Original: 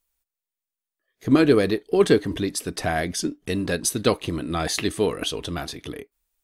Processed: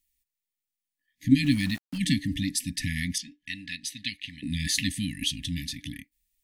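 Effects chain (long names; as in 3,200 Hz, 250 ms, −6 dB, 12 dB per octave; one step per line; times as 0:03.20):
brick-wall band-stop 300–1,700 Hz
0:01.44–0:01.98: centre clipping without the shift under −39.5 dBFS
0:03.18–0:04.43: three-way crossover with the lows and the highs turned down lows −18 dB, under 590 Hz, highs −16 dB, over 4,300 Hz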